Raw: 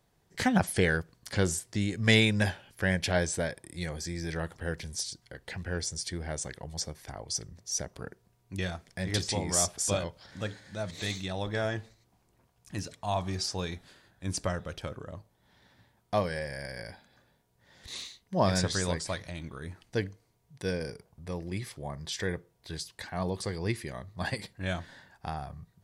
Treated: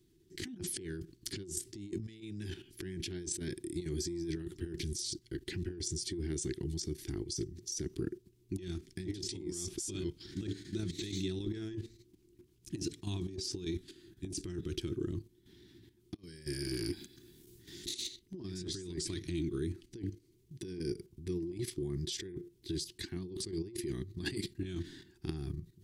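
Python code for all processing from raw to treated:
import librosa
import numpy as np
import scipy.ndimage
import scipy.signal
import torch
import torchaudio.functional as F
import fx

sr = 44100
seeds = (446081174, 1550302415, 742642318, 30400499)

y = fx.chain(x, sr, fx.high_shelf(hz=4600.0, db=10.0),
    fx.over_compress(threshold_db=-40.0, ratio=-0.5),
    fx.transformer_sat(knee_hz=1500.0), at=(16.14, 18.07))
y = fx.level_steps(y, sr, step_db=11)
y = fx.curve_eq(y, sr, hz=(230.0, 360.0, 550.0, 3200.0), db=(0, 15, -29, -2))
y = fx.over_compress(y, sr, threshold_db=-41.0, ratio=-1.0)
y = y * 10.0 ** (2.0 / 20.0)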